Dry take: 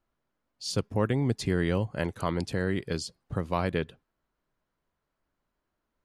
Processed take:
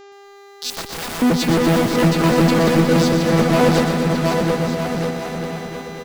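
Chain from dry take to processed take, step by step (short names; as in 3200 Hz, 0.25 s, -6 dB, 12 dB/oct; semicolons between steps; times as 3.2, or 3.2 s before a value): arpeggiated vocoder bare fifth, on E3, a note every 92 ms; low shelf 200 Hz -8.5 dB; in parallel at -9.5 dB: fuzz box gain 48 dB, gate -52 dBFS; on the sum: buzz 400 Hz, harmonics 18, -48 dBFS -7 dB/oct; 0.7–1.22 wrapped overs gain 27.5 dB; on a send: bouncing-ball echo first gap 0.72 s, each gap 0.75×, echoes 5; on the sum: lo-fi delay 0.121 s, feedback 80%, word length 9-bit, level -8 dB; gain +5.5 dB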